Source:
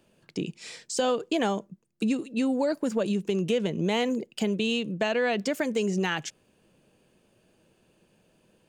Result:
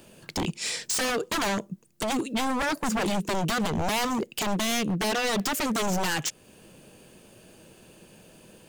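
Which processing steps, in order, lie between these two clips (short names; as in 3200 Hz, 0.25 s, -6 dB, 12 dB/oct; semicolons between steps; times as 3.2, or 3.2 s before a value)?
high shelf 6300 Hz +8.5 dB; in parallel at +2 dB: compressor 6:1, threshold -41 dBFS, peak gain reduction 18 dB; on the sum: wavefolder -26 dBFS; gain +4.5 dB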